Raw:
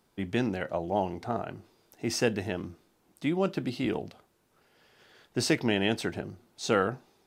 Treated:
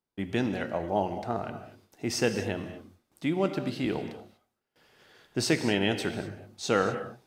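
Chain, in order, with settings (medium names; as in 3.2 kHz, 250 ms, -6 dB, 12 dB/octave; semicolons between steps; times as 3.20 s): gate with hold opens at -55 dBFS; gated-style reverb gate 270 ms flat, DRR 8 dB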